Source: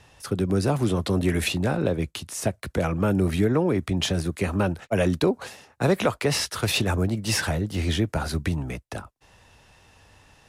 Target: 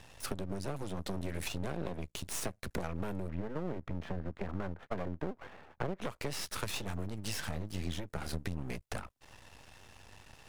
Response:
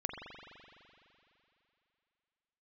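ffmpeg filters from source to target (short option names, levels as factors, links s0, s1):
-filter_complex "[0:a]asplit=3[s0][s1][s2];[s0]afade=t=out:st=3.27:d=0.02[s3];[s1]lowpass=f=1800:w=0.5412,lowpass=f=1800:w=1.3066,afade=t=in:st=3.27:d=0.02,afade=t=out:st=6.01:d=0.02[s4];[s2]afade=t=in:st=6.01:d=0.02[s5];[s3][s4][s5]amix=inputs=3:normalize=0,acompressor=threshold=0.0224:ratio=12,aeval=exprs='max(val(0),0)':c=same,volume=1.33"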